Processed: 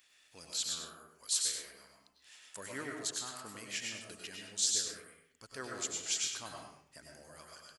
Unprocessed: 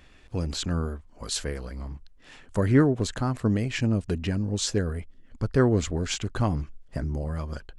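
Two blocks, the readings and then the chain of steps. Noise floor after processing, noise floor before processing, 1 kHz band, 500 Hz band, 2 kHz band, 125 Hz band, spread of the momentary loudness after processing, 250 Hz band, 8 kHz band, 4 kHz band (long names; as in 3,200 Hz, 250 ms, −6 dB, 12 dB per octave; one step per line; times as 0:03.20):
−69 dBFS, −53 dBFS, −13.0 dB, −20.5 dB, −8.5 dB, −33.0 dB, 22 LU, −25.5 dB, +2.5 dB, −2.0 dB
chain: first difference
single-tap delay 99 ms −8.5 dB
comb and all-pass reverb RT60 0.61 s, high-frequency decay 0.6×, pre-delay 70 ms, DRR 0.5 dB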